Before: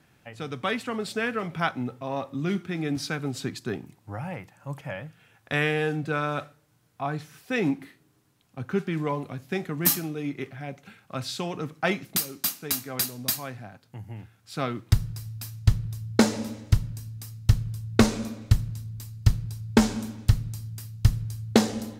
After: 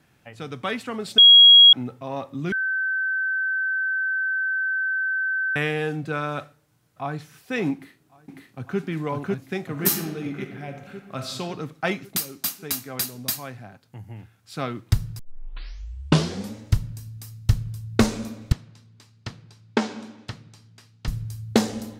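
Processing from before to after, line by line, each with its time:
1.18–1.73 bleep 3300 Hz -7 dBFS
2.52–5.56 bleep 1540 Hz -21.5 dBFS
6.41–7.16 echo throw 0.55 s, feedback 40%, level -17.5 dB
7.73–8.79 echo throw 0.55 s, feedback 60%, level -0.5 dB
9.66–11.37 reverb throw, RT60 1.2 s, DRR 5.5 dB
15.19 tape start 1.37 s
18.52–21.08 BPF 290–4300 Hz

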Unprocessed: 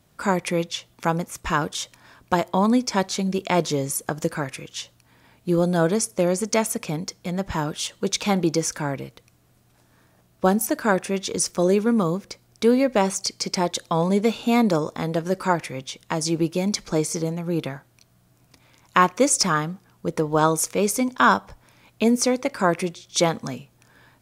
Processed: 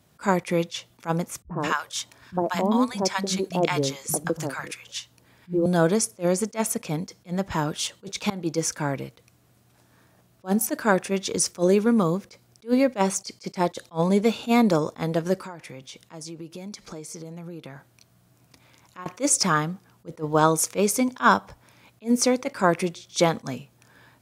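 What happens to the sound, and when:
1.42–5.66 three bands offset in time lows, mids, highs 50/180 ms, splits 190/840 Hz
8.3–8.77 fade in equal-power, from -23.5 dB
15.36–19.06 compressor 5:1, threshold -36 dBFS
whole clip: HPF 63 Hz; attack slew limiter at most 360 dB/s

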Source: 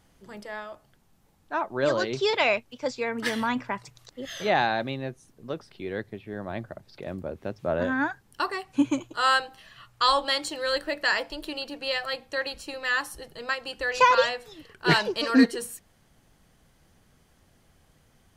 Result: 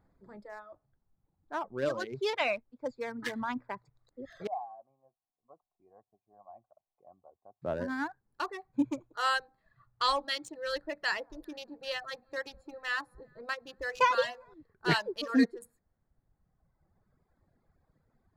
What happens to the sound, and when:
4.47–7.62 vocal tract filter a
10.94–14.54 echo with dull and thin repeats by turns 0.198 s, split 1100 Hz, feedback 59%, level -14 dB
whole clip: Wiener smoothing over 15 samples; reverb removal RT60 1.8 s; gain -6 dB

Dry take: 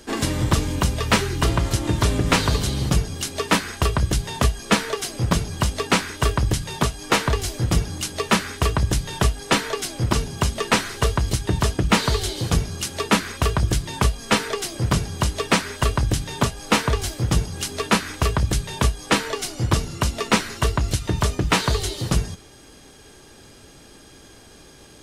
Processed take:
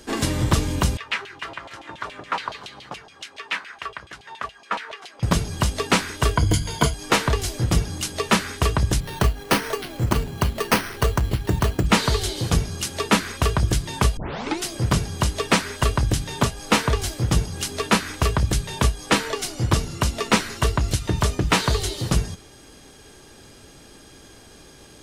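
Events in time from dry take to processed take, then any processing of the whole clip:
0.97–5.23 LFO band-pass saw down 7.1 Hz 720–3100 Hz
6.36–6.94 ripple EQ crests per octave 1.8, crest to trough 12 dB
9–11.86 careless resampling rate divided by 6×, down filtered, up hold
14.17 tape start 0.48 s

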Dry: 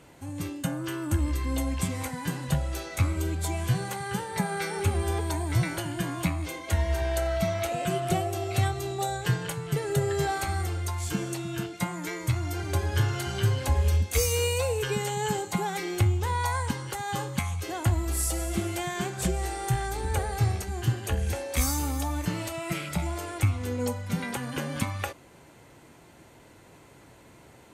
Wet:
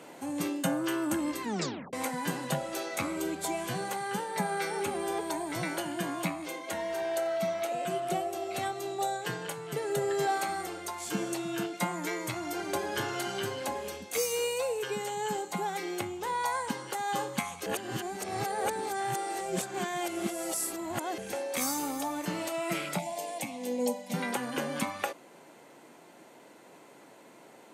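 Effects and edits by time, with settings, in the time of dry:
1.42 tape stop 0.51 s
17.66–21.18 reverse
22.99–24.14 fixed phaser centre 360 Hz, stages 6
whole clip: HPF 190 Hz 24 dB/oct; bell 660 Hz +4 dB 1.3 oct; vocal rider 2 s; gain -3 dB

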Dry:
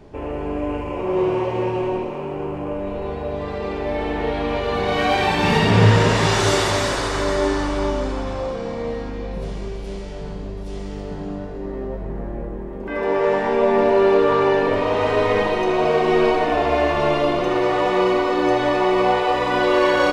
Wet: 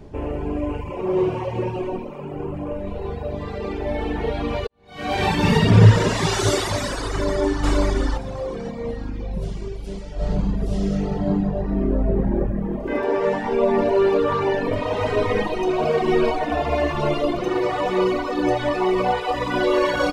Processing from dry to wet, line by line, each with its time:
4.67–5.25 fade in quadratic
7.1–7.64 echo throw 0.53 s, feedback 25%, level -1 dB
10.15–12.91 reverb throw, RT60 1.6 s, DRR -6.5 dB
whole clip: low shelf 330 Hz +8 dB; reverb removal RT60 1.8 s; high shelf 5400 Hz +5.5 dB; gain -2 dB

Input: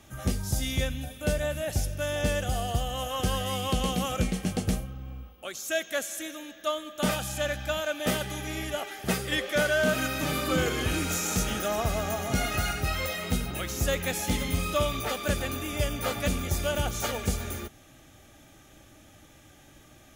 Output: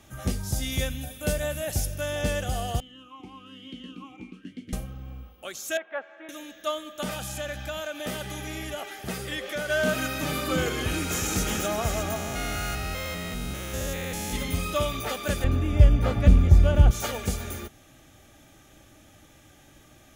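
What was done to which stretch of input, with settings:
0.72–2.01 high shelf 7600 Hz +8 dB
2.8–4.73 vowel sweep i-u 1.1 Hz
5.77–6.29 speaker cabinet 480–2000 Hz, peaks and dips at 510 Hz -3 dB, 870 Hz +7 dB, 1900 Hz -5 dB
7.02–9.7 compressor 2.5:1, threshold -30 dBFS
10.74–11.3 echo throw 0.36 s, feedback 70%, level -5 dB
12.16–14.36 stepped spectrum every 0.2 s
15.44–16.91 RIAA curve playback

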